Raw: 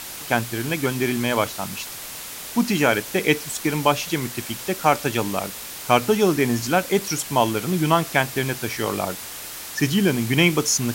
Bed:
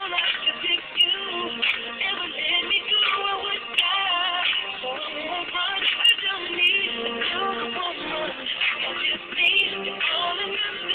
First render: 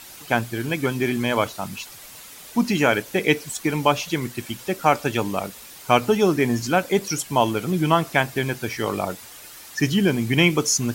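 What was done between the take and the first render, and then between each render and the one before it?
noise reduction 9 dB, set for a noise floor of -35 dBFS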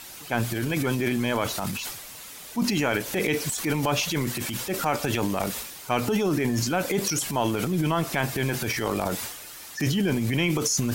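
transient shaper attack -7 dB, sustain +9 dB; compression 5:1, threshold -21 dBFS, peak gain reduction 7.5 dB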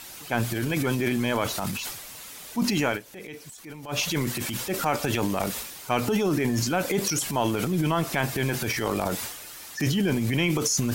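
2.89–4.00 s: dip -15.5 dB, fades 0.12 s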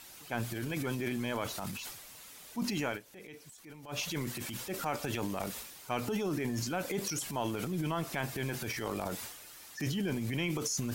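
trim -9.5 dB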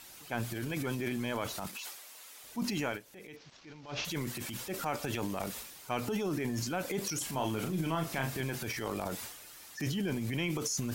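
1.67–2.44 s: high-pass 430 Hz; 3.36–4.05 s: CVSD coder 32 kbps; 7.17–8.41 s: doubling 37 ms -5.5 dB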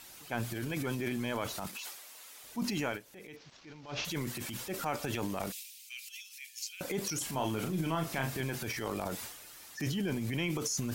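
5.52–6.81 s: elliptic high-pass 2.4 kHz, stop band 70 dB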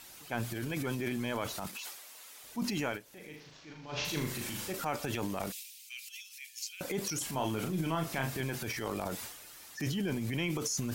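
3.09–4.73 s: flutter echo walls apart 6.7 m, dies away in 0.53 s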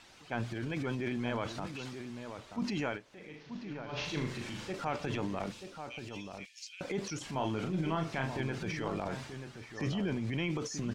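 distance through air 120 m; echo from a far wall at 160 m, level -8 dB

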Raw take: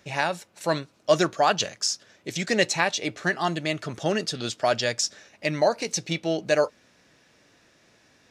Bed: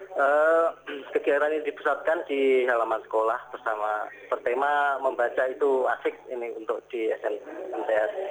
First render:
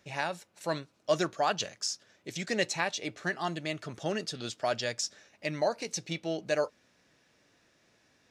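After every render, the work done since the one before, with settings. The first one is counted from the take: trim -7.5 dB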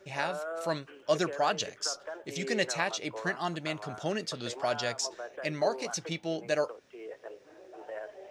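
add bed -16.5 dB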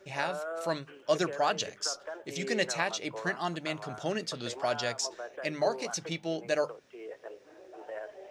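hum notches 50/100/150/200 Hz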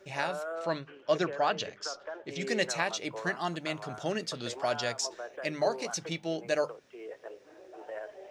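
0.55–2.41 s: low-pass 4.4 kHz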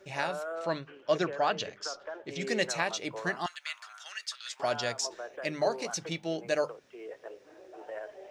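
3.46–4.60 s: high-pass 1.3 kHz 24 dB/octave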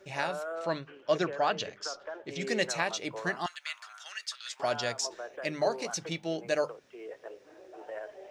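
no audible change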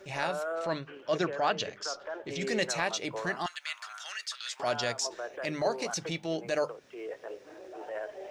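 transient shaper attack -6 dB, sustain -1 dB; in parallel at -0.5 dB: compression, threshold -41 dBFS, peak gain reduction 15.5 dB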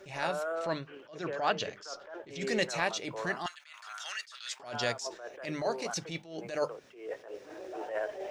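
gain riding within 4 dB 2 s; attacks held to a fixed rise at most 110 dB/s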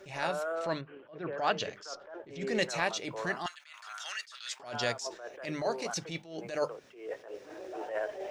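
0.81–1.38 s: distance through air 430 m; 1.95–2.55 s: treble shelf 2.3 kHz -9.5 dB

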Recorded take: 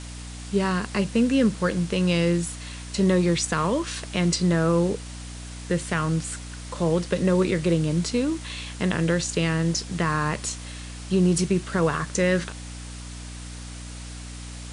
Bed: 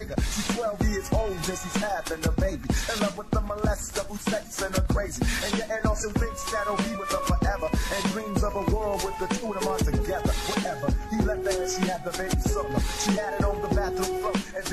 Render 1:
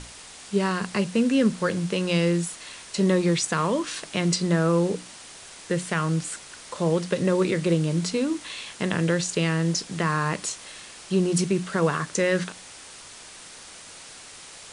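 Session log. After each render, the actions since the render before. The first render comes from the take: hum notches 60/120/180/240/300 Hz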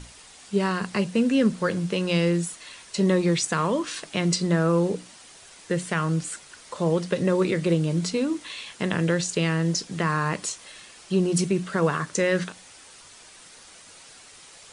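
noise reduction 6 dB, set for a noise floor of -44 dBFS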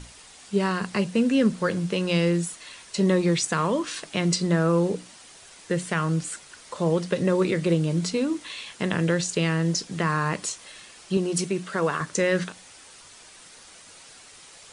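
11.17–12.01 s: bass shelf 170 Hz -11.5 dB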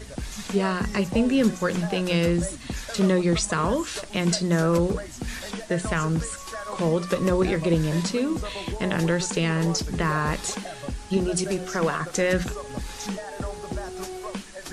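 add bed -7 dB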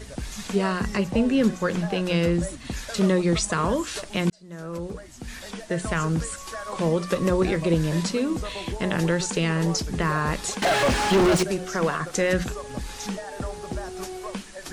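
0.97–2.65 s: treble shelf 5.5 kHz -6 dB; 4.30–6.03 s: fade in; 10.62–11.43 s: overdrive pedal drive 37 dB, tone 2 kHz, clips at -11 dBFS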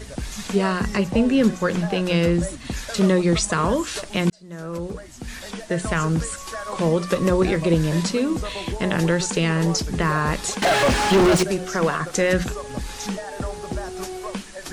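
trim +3 dB

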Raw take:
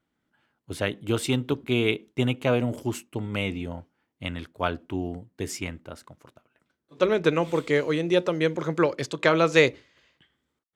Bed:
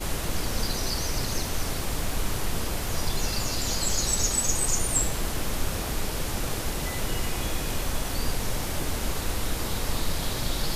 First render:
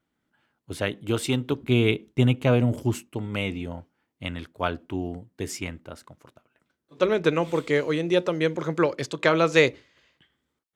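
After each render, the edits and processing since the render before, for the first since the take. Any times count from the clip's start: 1.61–3.11 s: bass shelf 170 Hz +10.5 dB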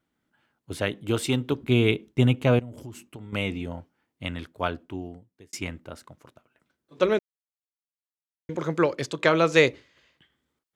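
2.59–3.33 s: compression, threshold -37 dBFS; 4.55–5.53 s: fade out; 7.19–8.49 s: mute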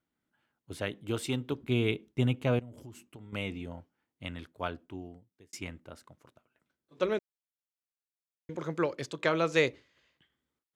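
trim -7.5 dB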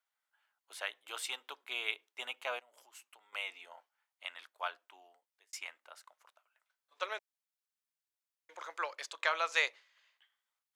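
high-pass 770 Hz 24 dB/octave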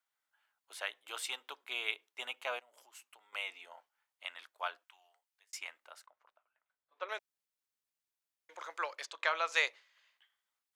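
4.83–5.54 s: high-pass 1.4 kHz -> 670 Hz; 6.06–7.09 s: tape spacing loss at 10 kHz 31 dB; 9.05–9.48 s: distance through air 56 m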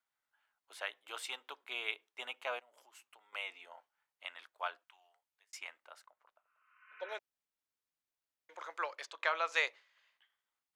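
6.46–7.12 s: spectral replace 1–3.1 kHz both; treble shelf 3.7 kHz -6.5 dB

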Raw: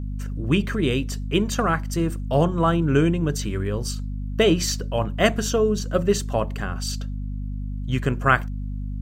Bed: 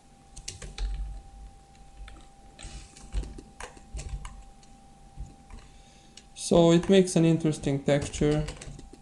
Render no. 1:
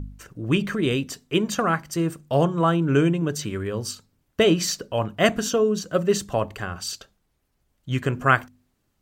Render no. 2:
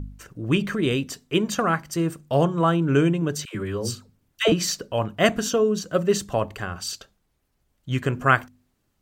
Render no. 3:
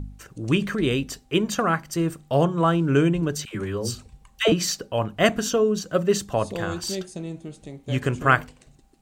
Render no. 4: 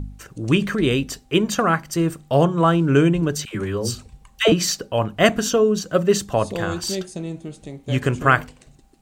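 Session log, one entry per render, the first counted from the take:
de-hum 50 Hz, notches 5
3.45–4.52 s: phase dispersion lows, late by 100 ms, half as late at 660 Hz
add bed -11.5 dB
trim +3.5 dB; peak limiter -1 dBFS, peak gain reduction 2.5 dB

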